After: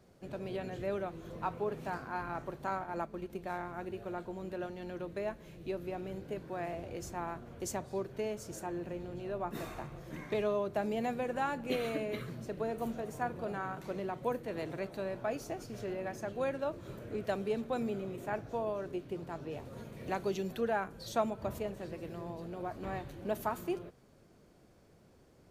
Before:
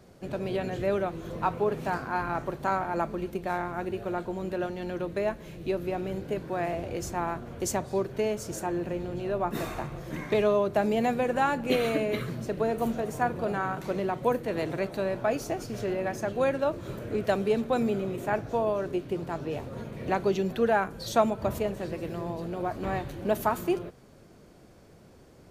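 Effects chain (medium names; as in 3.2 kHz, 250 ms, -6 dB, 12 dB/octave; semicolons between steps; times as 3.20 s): 2.75–3.30 s: transient shaper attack 0 dB, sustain -6 dB; 19.65–20.61 s: treble shelf 4.8 kHz +8 dB; trim -8.5 dB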